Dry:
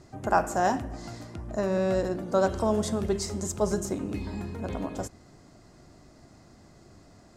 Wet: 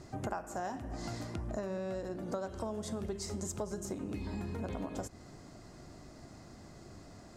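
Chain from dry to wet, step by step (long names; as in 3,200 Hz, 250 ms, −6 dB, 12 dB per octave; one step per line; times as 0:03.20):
downward compressor 16 to 1, threshold −36 dBFS, peak gain reduction 20 dB
level +1.5 dB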